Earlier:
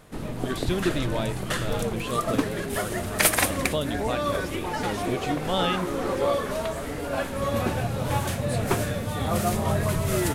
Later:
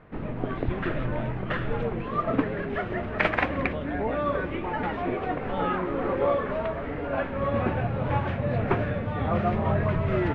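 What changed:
speech −8.5 dB
master: add low-pass filter 2,500 Hz 24 dB per octave

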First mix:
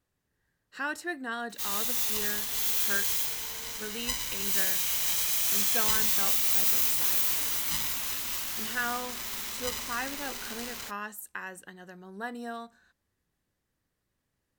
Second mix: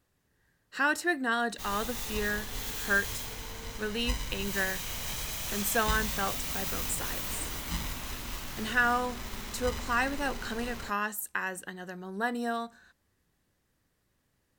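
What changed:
speech +6.0 dB
background: add spectral tilt −3 dB per octave

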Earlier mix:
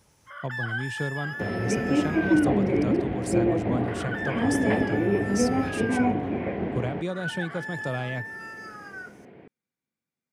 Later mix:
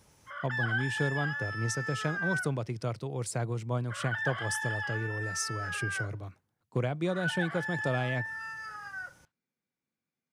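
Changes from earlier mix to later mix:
first sound: add low-pass filter 7,100 Hz 12 dB per octave
second sound: muted

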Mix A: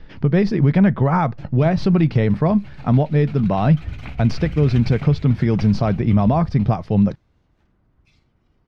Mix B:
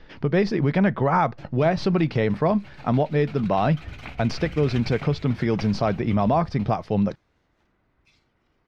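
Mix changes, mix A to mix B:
second sound: remove low-pass filter 1,500 Hz
master: add bass and treble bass −9 dB, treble +1 dB

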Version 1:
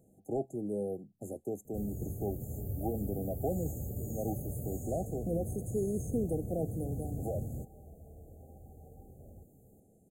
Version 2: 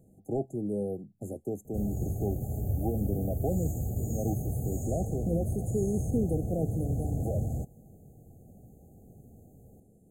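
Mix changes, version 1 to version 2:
first sound: remove phaser with its sweep stopped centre 2,100 Hz, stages 4
second sound: muted
master: add low-shelf EQ 250 Hz +8.5 dB

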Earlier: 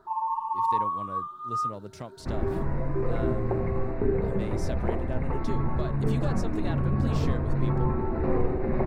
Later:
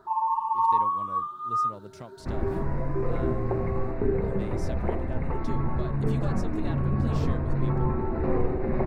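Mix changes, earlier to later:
speech −3.5 dB
first sound +3.0 dB

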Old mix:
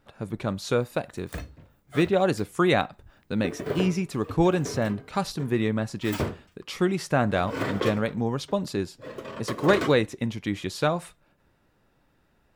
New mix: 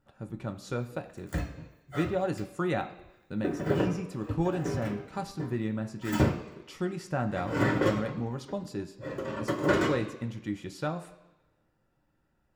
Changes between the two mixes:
speech −9.0 dB
reverb: on, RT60 1.1 s

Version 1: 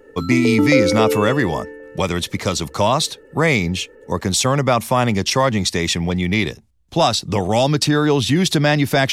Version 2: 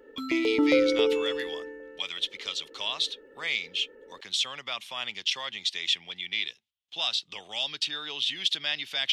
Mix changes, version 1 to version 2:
speech: add resonant band-pass 3,200 Hz, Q 4
background −6.5 dB

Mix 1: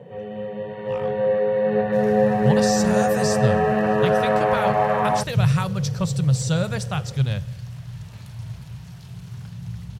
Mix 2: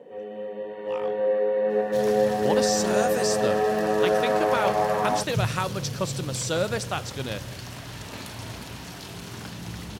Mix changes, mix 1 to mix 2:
first sound −5.0 dB
second sound +11.0 dB
master: add low shelf with overshoot 200 Hz −12 dB, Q 3

